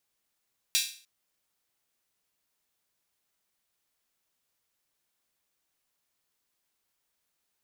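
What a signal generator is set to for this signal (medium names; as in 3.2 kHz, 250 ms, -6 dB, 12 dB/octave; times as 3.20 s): open hi-hat length 0.30 s, high-pass 3.2 kHz, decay 0.43 s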